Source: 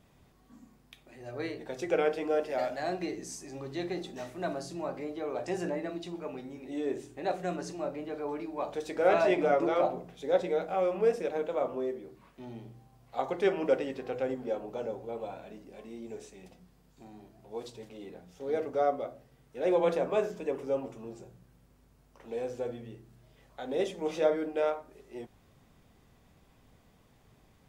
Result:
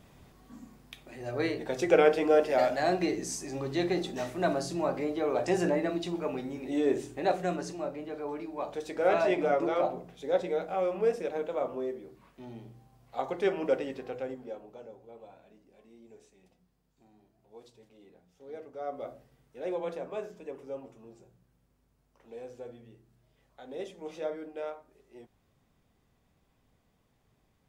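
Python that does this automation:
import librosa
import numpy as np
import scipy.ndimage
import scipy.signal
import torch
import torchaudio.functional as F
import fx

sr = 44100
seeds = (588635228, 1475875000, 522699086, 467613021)

y = fx.gain(x, sr, db=fx.line((7.08, 6.0), (7.94, -1.0), (13.96, -1.0), (14.87, -12.0), (18.8, -12.0), (19.1, 0.0), (19.83, -8.5)))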